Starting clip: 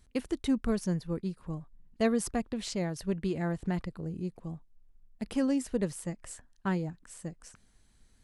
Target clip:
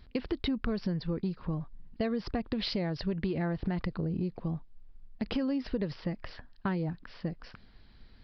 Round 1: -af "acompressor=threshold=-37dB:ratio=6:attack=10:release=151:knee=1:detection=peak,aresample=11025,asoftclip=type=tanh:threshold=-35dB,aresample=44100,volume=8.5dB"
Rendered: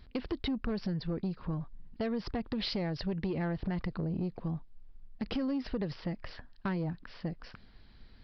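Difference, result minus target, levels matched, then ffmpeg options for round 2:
soft clipping: distortion +13 dB
-af "acompressor=threshold=-37dB:ratio=6:attack=10:release=151:knee=1:detection=peak,aresample=11025,asoftclip=type=tanh:threshold=-26dB,aresample=44100,volume=8.5dB"

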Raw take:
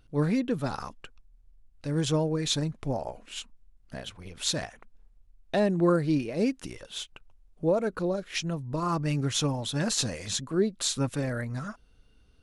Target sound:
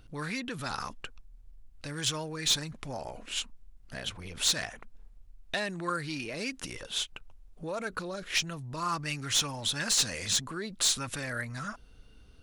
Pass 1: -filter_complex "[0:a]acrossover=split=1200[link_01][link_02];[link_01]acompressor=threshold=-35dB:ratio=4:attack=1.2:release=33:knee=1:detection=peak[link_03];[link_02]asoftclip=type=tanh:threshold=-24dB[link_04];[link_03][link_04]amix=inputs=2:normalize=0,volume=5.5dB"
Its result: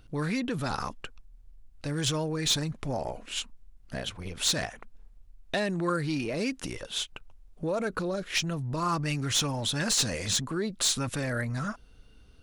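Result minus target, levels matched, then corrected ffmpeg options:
downward compressor: peak gain reduction −8 dB
-filter_complex "[0:a]acrossover=split=1200[link_01][link_02];[link_01]acompressor=threshold=-45.5dB:ratio=4:attack=1.2:release=33:knee=1:detection=peak[link_03];[link_02]asoftclip=type=tanh:threshold=-24dB[link_04];[link_03][link_04]amix=inputs=2:normalize=0,volume=5.5dB"

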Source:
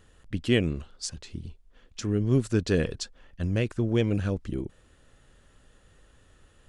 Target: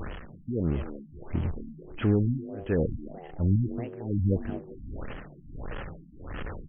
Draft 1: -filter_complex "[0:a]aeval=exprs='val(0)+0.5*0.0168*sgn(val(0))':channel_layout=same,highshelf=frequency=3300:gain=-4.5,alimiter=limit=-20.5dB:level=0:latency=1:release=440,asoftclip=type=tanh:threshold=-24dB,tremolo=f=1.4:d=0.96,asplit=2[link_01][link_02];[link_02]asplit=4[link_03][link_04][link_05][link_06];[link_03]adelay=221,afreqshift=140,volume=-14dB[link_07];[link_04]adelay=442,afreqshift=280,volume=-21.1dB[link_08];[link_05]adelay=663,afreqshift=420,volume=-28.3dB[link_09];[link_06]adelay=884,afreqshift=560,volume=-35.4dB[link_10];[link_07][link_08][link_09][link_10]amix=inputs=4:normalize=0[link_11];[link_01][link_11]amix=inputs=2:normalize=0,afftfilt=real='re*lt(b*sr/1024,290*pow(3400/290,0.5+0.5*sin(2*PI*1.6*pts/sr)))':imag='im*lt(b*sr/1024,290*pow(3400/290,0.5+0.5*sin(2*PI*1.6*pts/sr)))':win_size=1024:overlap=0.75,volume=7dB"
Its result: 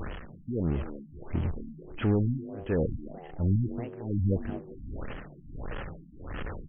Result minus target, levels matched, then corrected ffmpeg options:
soft clipping: distortion +13 dB
-filter_complex "[0:a]aeval=exprs='val(0)+0.5*0.0168*sgn(val(0))':channel_layout=same,highshelf=frequency=3300:gain=-4.5,alimiter=limit=-20.5dB:level=0:latency=1:release=440,asoftclip=type=tanh:threshold=-16dB,tremolo=f=1.4:d=0.96,asplit=2[link_01][link_02];[link_02]asplit=4[link_03][link_04][link_05][link_06];[link_03]adelay=221,afreqshift=140,volume=-14dB[link_07];[link_04]adelay=442,afreqshift=280,volume=-21.1dB[link_08];[link_05]adelay=663,afreqshift=420,volume=-28.3dB[link_09];[link_06]adelay=884,afreqshift=560,volume=-35.4dB[link_10];[link_07][link_08][link_09][link_10]amix=inputs=4:normalize=0[link_11];[link_01][link_11]amix=inputs=2:normalize=0,afftfilt=real='re*lt(b*sr/1024,290*pow(3400/290,0.5+0.5*sin(2*PI*1.6*pts/sr)))':imag='im*lt(b*sr/1024,290*pow(3400/290,0.5+0.5*sin(2*PI*1.6*pts/sr)))':win_size=1024:overlap=0.75,volume=7dB"

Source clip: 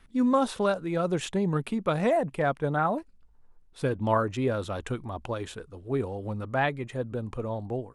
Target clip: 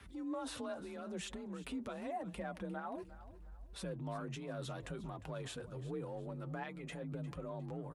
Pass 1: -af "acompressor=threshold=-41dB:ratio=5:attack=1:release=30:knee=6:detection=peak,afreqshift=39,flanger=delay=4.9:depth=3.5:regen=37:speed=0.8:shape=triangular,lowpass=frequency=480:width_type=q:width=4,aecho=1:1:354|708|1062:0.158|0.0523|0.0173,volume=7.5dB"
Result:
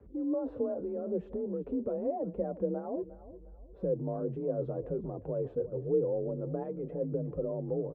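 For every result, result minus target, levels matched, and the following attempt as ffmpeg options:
downward compressor: peak gain reduction −5 dB; 500 Hz band +4.0 dB
-af "acompressor=threshold=-47.5dB:ratio=5:attack=1:release=30:knee=6:detection=peak,afreqshift=39,flanger=delay=4.9:depth=3.5:regen=37:speed=0.8:shape=triangular,lowpass=frequency=480:width_type=q:width=4,aecho=1:1:354|708|1062:0.158|0.0523|0.0173,volume=7.5dB"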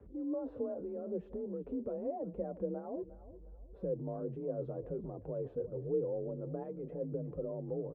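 500 Hz band +4.0 dB
-af "acompressor=threshold=-47.5dB:ratio=5:attack=1:release=30:knee=6:detection=peak,afreqshift=39,flanger=delay=4.9:depth=3.5:regen=37:speed=0.8:shape=triangular,aecho=1:1:354|708|1062:0.158|0.0523|0.0173,volume=7.5dB"

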